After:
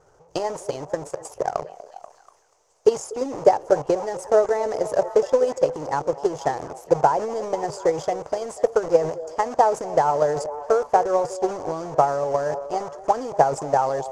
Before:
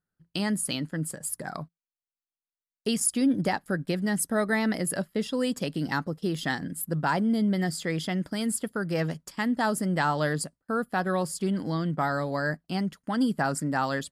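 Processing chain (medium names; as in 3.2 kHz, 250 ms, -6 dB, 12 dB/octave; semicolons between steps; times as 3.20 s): jump at every zero crossing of -39 dBFS; in parallel at +2.5 dB: bit crusher 5-bit; on the sum: FFT filter 140 Hz 0 dB, 200 Hz -17 dB, 440 Hz +13 dB, 910 Hz +11 dB, 1.6 kHz -5 dB, 3.9 kHz -10 dB, 6.3 kHz +9 dB, 10 kHz -6 dB; on a send: repeats whose band climbs or falls 242 ms, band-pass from 520 Hz, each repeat 0.7 oct, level -11 dB; on the sum: transient shaper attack +11 dB, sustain +7 dB; distance through air 63 m; trim -13.5 dB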